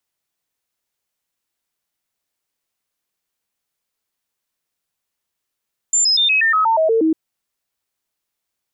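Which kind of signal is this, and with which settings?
stepped sine 7.22 kHz down, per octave 2, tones 10, 0.12 s, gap 0.00 s -12 dBFS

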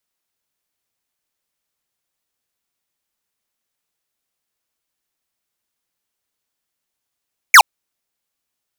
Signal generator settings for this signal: laser zap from 2.4 kHz, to 740 Hz, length 0.07 s square, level -4 dB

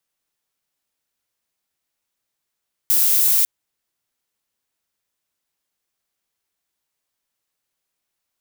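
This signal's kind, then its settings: noise violet, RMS -16 dBFS 0.55 s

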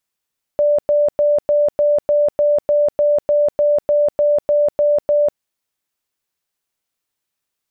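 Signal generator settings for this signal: tone bursts 588 Hz, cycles 115, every 0.30 s, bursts 16, -11 dBFS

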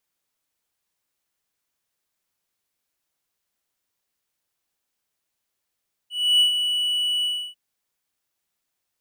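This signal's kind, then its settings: ADSR triangle 2.95 kHz, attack 300 ms, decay 111 ms, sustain -7.5 dB, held 1.14 s, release 304 ms -11 dBFS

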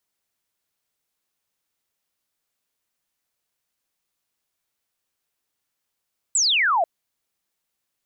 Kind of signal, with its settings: laser zap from 8.2 kHz, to 630 Hz, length 0.49 s sine, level -16.5 dB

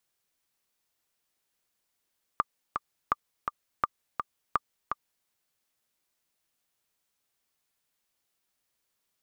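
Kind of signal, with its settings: metronome 167 bpm, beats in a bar 2, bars 4, 1.19 kHz, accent 5.5 dB -10.5 dBFS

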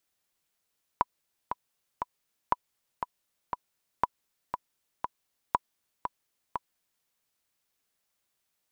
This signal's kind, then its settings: metronome 119 bpm, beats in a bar 3, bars 4, 986 Hz, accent 7.5 dB -9.5 dBFS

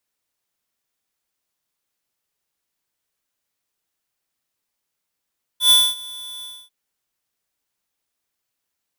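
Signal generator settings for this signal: ADSR square 3.47 kHz, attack 106 ms, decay 240 ms, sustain -23 dB, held 0.83 s, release 264 ms -11 dBFS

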